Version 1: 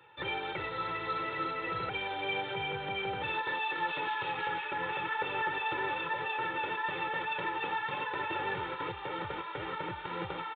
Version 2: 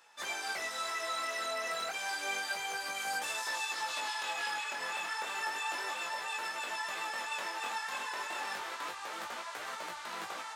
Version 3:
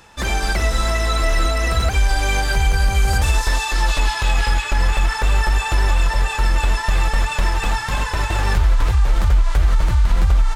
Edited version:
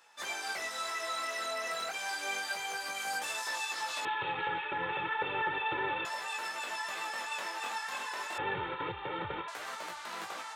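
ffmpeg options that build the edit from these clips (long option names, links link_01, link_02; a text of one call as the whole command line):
ffmpeg -i take0.wav -i take1.wav -filter_complex "[0:a]asplit=2[link_01][link_02];[1:a]asplit=3[link_03][link_04][link_05];[link_03]atrim=end=4.052[link_06];[link_01]atrim=start=4.048:end=6.052[link_07];[link_04]atrim=start=6.048:end=8.382[link_08];[link_02]atrim=start=8.378:end=9.482[link_09];[link_05]atrim=start=9.478[link_10];[link_06][link_07]acrossfade=duration=0.004:curve1=hsin:curve2=hsin[link_11];[link_11][link_08]acrossfade=duration=0.004:curve1=hsin:curve2=hsin[link_12];[link_12][link_09]acrossfade=duration=0.004:curve1=hsin:curve2=hsin[link_13];[link_13][link_10]acrossfade=duration=0.004:curve1=hsin:curve2=hsin" out.wav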